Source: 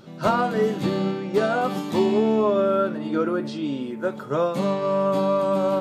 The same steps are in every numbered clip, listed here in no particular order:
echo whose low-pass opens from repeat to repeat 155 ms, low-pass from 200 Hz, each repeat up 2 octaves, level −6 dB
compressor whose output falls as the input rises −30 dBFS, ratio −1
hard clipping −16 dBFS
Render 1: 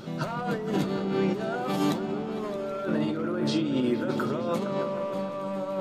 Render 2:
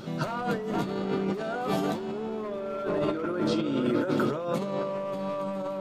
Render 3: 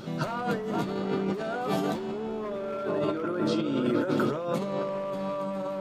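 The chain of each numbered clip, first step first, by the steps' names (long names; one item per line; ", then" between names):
hard clipping, then compressor whose output falls as the input rises, then echo whose low-pass opens from repeat to repeat
hard clipping, then echo whose low-pass opens from repeat to repeat, then compressor whose output falls as the input rises
echo whose low-pass opens from repeat to repeat, then hard clipping, then compressor whose output falls as the input rises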